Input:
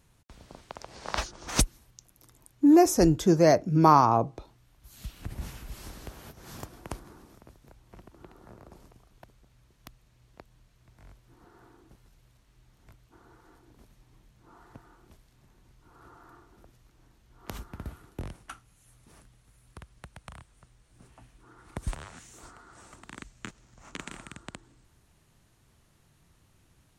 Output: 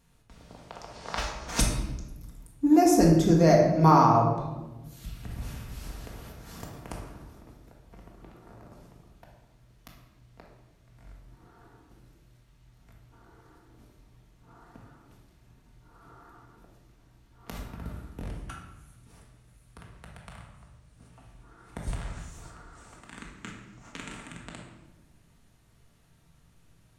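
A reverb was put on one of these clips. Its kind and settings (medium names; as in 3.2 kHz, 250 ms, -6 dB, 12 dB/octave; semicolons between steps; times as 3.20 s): simulated room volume 590 m³, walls mixed, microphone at 1.7 m; trim -3.5 dB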